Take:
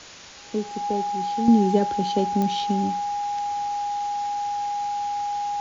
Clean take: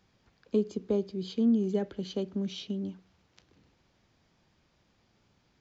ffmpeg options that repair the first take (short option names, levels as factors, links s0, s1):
-af "adeclick=t=4,bandreject=f=820:w=30,afwtdn=0.01,asetnsamples=n=441:p=0,asendcmd='1.48 volume volume -9dB',volume=1"